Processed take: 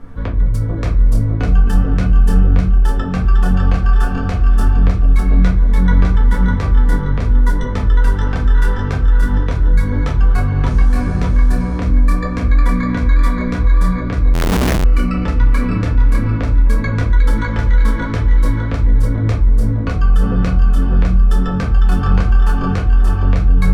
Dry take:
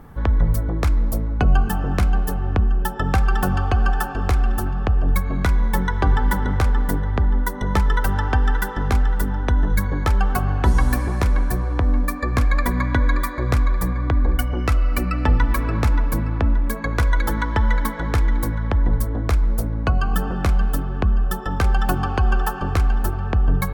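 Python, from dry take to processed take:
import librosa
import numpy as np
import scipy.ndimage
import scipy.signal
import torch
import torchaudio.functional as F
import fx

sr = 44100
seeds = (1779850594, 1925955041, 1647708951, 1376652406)

p1 = fx.over_compress(x, sr, threshold_db=-22.0, ratio=-0.5)
p2 = x + (p1 * 10.0 ** (-0.5 / 20.0))
p3 = scipy.signal.sosfilt(scipy.signal.butter(2, 7300.0, 'lowpass', fs=sr, output='sos'), p2)
p4 = fx.peak_eq(p3, sr, hz=810.0, db=-10.5, octaves=0.35)
p5 = fx.notch(p4, sr, hz=660.0, q=20.0)
p6 = p5 + fx.echo_single(p5, sr, ms=604, db=-3.5, dry=0)
p7 = fx.room_shoebox(p6, sr, seeds[0], volume_m3=130.0, walls='furnished', distance_m=1.7)
p8 = fx.schmitt(p7, sr, flips_db=-23.5, at=(14.34, 14.84))
y = p8 * 10.0 ** (-7.0 / 20.0)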